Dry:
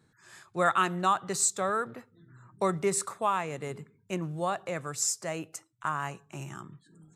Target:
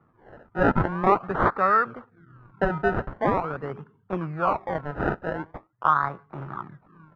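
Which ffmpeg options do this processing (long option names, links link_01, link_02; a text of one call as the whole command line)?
ffmpeg -i in.wav -af "acrusher=samples=27:mix=1:aa=0.000001:lfo=1:lforange=27:lforate=0.44,lowpass=frequency=1300:width_type=q:width=3.6,volume=3dB" out.wav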